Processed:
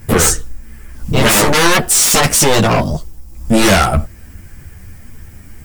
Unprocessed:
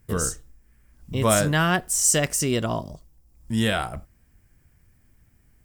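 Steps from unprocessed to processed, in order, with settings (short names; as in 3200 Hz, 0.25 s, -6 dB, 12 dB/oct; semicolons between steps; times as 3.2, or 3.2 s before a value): in parallel at -3 dB: compressor, threshold -38 dBFS, peak gain reduction 20.5 dB; on the sum: sine folder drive 16 dB, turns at -6 dBFS; ensemble effect; gain +2 dB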